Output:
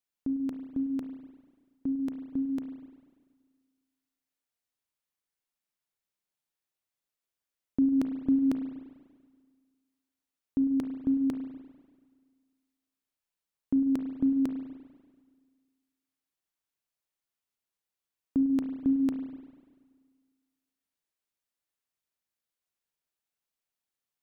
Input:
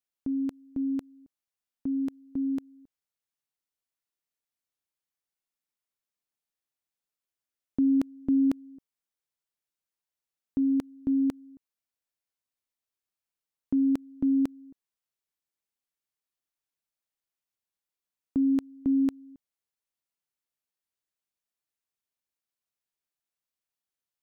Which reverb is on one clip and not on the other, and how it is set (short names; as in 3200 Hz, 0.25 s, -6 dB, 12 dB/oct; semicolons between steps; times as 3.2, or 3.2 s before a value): spring tank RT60 1.6 s, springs 34/49 ms, chirp 25 ms, DRR 5.5 dB